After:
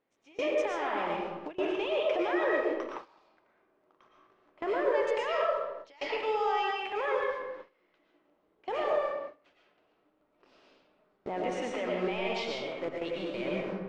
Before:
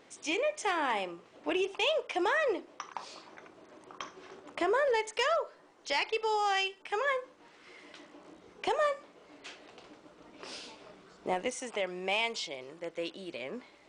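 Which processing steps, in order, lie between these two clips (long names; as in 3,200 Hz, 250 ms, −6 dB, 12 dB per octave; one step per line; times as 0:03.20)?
turntable brake at the end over 0.40 s
in parallel at −3.5 dB: bit reduction 7 bits
on the sum: low-pass filter 4,500 Hz 12 dB per octave
brickwall limiter −25 dBFS, peak gain reduction 10.5 dB
high-shelf EQ 3,500 Hz −10.5 dB
comb and all-pass reverb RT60 1.1 s, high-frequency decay 0.6×, pre-delay 75 ms, DRR −2.5 dB
noise gate with hold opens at −25 dBFS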